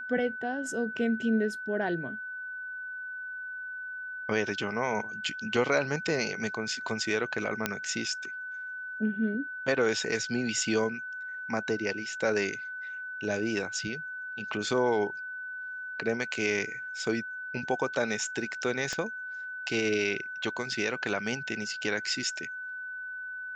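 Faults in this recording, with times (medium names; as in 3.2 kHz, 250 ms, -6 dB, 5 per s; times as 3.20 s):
whine 1.5 kHz -36 dBFS
7.66 s: pop -11 dBFS
18.93 s: pop -19 dBFS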